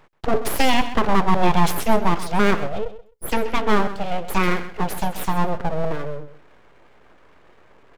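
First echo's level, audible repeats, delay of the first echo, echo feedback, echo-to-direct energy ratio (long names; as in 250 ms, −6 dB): −13.5 dB, 2, 130 ms, 17%, −13.5 dB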